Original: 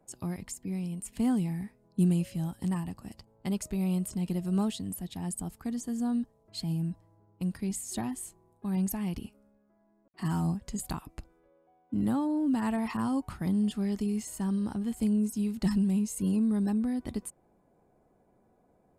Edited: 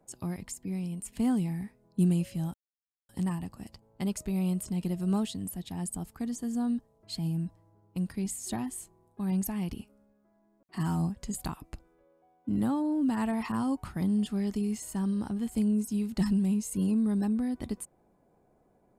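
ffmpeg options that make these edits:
-filter_complex "[0:a]asplit=2[s0][s1];[s0]atrim=end=2.54,asetpts=PTS-STARTPTS,afade=t=out:st=2.536:d=0.004:c=hsin,apad=pad_dur=0.55[s2];[s1]atrim=start=2.54,asetpts=PTS-STARTPTS,afade=t=in:d=0.004:c=hsin[s3];[s2][s3]concat=n=2:v=0:a=1"

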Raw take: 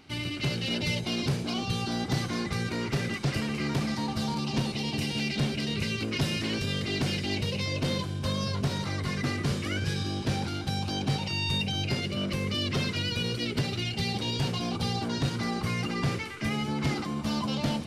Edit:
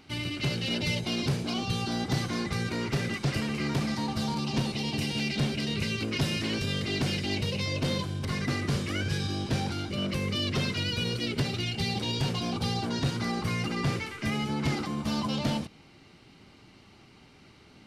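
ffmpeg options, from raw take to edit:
-filter_complex "[0:a]asplit=3[s0][s1][s2];[s0]atrim=end=8.252[s3];[s1]atrim=start=9.008:end=10.662[s4];[s2]atrim=start=12.088[s5];[s3][s4]acrossfade=d=0.004:c1=hsin:c2=hsin[s6];[s6][s5]acrossfade=d=0.004:c1=hsin:c2=hsin"

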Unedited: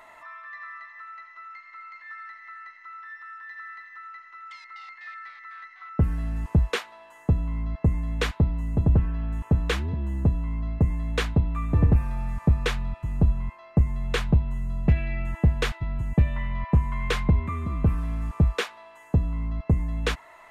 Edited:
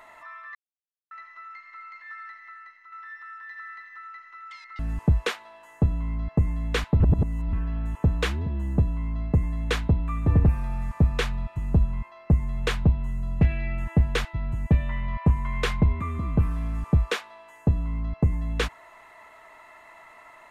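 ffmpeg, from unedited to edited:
-filter_complex "[0:a]asplit=7[s0][s1][s2][s3][s4][s5][s6];[s0]atrim=end=0.55,asetpts=PTS-STARTPTS,afade=t=out:st=0.546:d=0.004:c=hsin[s7];[s1]atrim=start=0.55:end=1.11,asetpts=PTS-STARTPTS,volume=0[s8];[s2]atrim=start=1.11:end=2.92,asetpts=PTS-STARTPTS,afade=t=in:d=0.004:c=hsin,afade=t=out:st=1.17:d=0.64:silence=0.446684[s9];[s3]atrim=start=2.92:end=4.792,asetpts=PTS-STARTPTS,afade=t=in:d=0.004:c=hsin:silence=0.446684[s10];[s4]atrim=start=6.258:end=8.472[s11];[s5]atrim=start=8.468:end=9.002,asetpts=PTS-STARTPTS,areverse[s12];[s6]atrim=start=8.998[s13];[s7][s8][s9][s10]concat=n=4:v=0:a=1[s14];[s14][s11]acrossfade=d=0.004:c1=hsin:c2=hsin[s15];[s15][s12]acrossfade=d=0.004:c1=hsin:c2=hsin[s16];[s16][s13]acrossfade=d=0.004:c1=hsin:c2=hsin"

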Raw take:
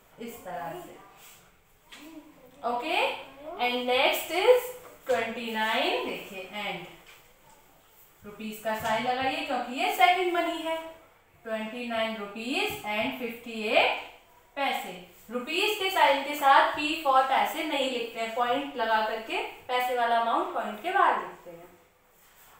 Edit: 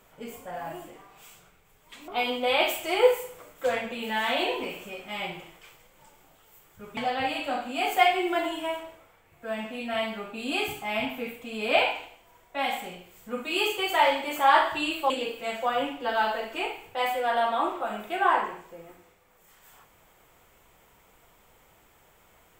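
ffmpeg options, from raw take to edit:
-filter_complex "[0:a]asplit=4[s0][s1][s2][s3];[s0]atrim=end=2.082[s4];[s1]atrim=start=3.528:end=8.422[s5];[s2]atrim=start=8.988:end=17.122[s6];[s3]atrim=start=17.838[s7];[s4][s5]acrossfade=d=0.004:c1=hsin:c2=hsin[s8];[s8][s6]acrossfade=d=0.004:c1=hsin:c2=hsin[s9];[s9][s7]acrossfade=d=0.004:c1=hsin:c2=hsin"

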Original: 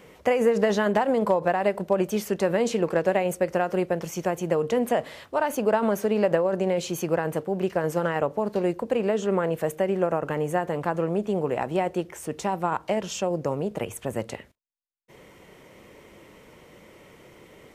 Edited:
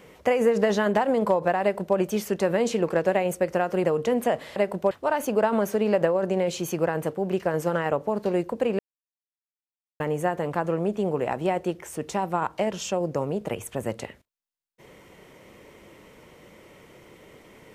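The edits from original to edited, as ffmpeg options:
-filter_complex "[0:a]asplit=6[s0][s1][s2][s3][s4][s5];[s0]atrim=end=3.842[s6];[s1]atrim=start=4.488:end=5.212[s7];[s2]atrim=start=1.618:end=1.972[s8];[s3]atrim=start=5.208:end=9.09,asetpts=PTS-STARTPTS,afade=t=out:st=3.878:d=0.004:c=hsin[s9];[s4]atrim=start=9.09:end=10.3,asetpts=PTS-STARTPTS,volume=0[s10];[s5]atrim=start=10.3,asetpts=PTS-STARTPTS,afade=t=in:d=0.004:c=hsin[s11];[s6][s7]acrossfade=d=0.004:c1=hsin:c2=hsin[s12];[s12][s8]acrossfade=d=0.004:c1=hsin:c2=hsin[s13];[s9][s10][s11]concat=n=3:v=0:a=1[s14];[s13][s14]acrossfade=d=0.004:c1=hsin:c2=hsin"

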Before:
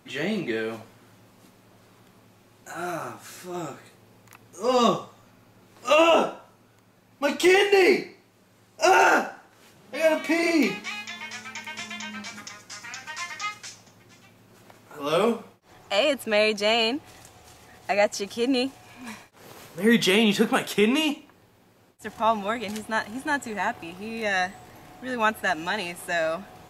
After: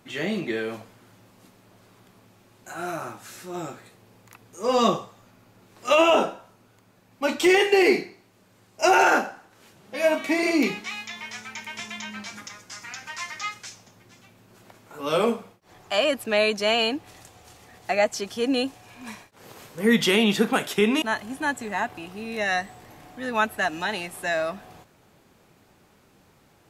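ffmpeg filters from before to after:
-filter_complex "[0:a]asplit=2[s0][s1];[s0]atrim=end=21.022[s2];[s1]atrim=start=22.868[s3];[s2][s3]acrossfade=d=0.004:c1=hsin:c2=hsin"

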